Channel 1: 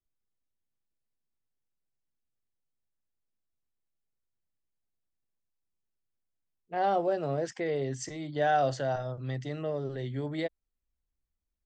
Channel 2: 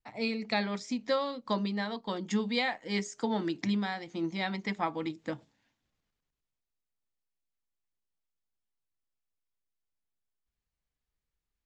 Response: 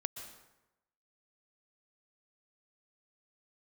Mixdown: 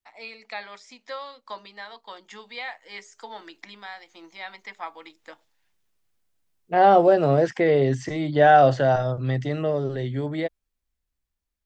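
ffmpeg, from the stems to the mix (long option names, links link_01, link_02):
-filter_complex "[0:a]dynaudnorm=framelen=640:gausssize=9:maxgain=13dB,volume=0dB[link_01];[1:a]highpass=740,volume=-1dB[link_02];[link_01][link_02]amix=inputs=2:normalize=0,acrossover=split=3400[link_03][link_04];[link_04]acompressor=threshold=-48dB:ratio=4:attack=1:release=60[link_05];[link_03][link_05]amix=inputs=2:normalize=0"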